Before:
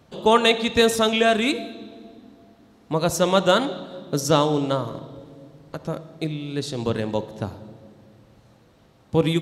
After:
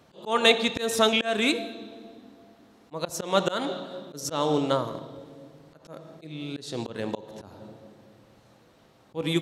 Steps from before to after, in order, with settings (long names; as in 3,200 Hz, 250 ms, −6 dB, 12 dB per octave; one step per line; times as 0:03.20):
volume swells 217 ms
low-shelf EQ 160 Hz −10 dB